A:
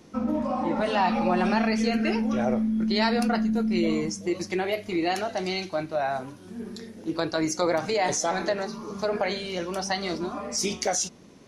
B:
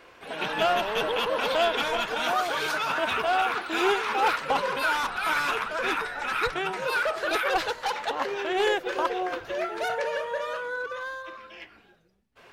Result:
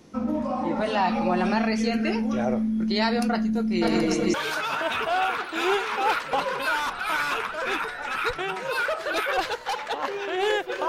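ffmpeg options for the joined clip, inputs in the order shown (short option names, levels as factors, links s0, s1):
-filter_complex "[0:a]asplit=3[s0][s1][s2];[s0]afade=t=out:st=3.81:d=0.02[s3];[s1]aecho=1:1:190|361|514.9|653.4|778.1|890.3:0.794|0.631|0.501|0.398|0.316|0.251,afade=t=in:st=3.81:d=0.02,afade=t=out:st=4.34:d=0.02[s4];[s2]afade=t=in:st=4.34:d=0.02[s5];[s3][s4][s5]amix=inputs=3:normalize=0,apad=whole_dur=10.88,atrim=end=10.88,atrim=end=4.342[s6];[1:a]atrim=start=2.508:end=9.05[s7];[s6][s7]acrossfade=d=0.004:c1=hsin:c2=hsin"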